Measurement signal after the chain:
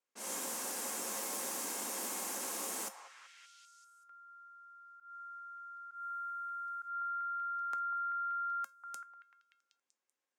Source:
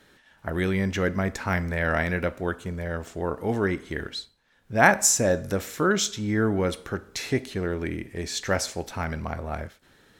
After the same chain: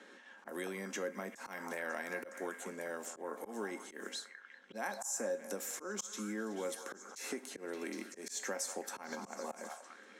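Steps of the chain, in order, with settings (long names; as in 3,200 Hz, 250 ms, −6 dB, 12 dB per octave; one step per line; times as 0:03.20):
notch filter 640 Hz, Q 16
downward compressor 5 to 1, threshold −30 dBFS
echo through a band-pass that steps 192 ms, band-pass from 950 Hz, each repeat 0.7 octaves, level −7 dB
dynamic equaliser 860 Hz, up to +4 dB, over −52 dBFS, Q 2.3
elliptic high-pass filter 210 Hz, stop band 40 dB
low-pass that shuts in the quiet parts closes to 2,900 Hz, open at −33 dBFS
high shelf with overshoot 5,300 Hz +9 dB, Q 1.5
tuned comb filter 540 Hz, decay 0.2 s, harmonics all, mix 70%
volume swells 153 ms
multiband upward and downward compressor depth 40%
level +3 dB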